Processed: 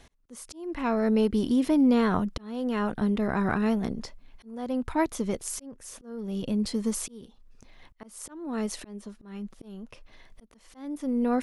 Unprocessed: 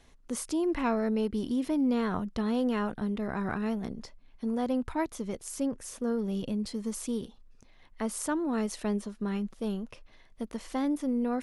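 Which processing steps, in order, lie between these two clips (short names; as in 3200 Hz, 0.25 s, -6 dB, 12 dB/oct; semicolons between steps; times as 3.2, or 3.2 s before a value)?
auto swell 0.636 s; gain +6 dB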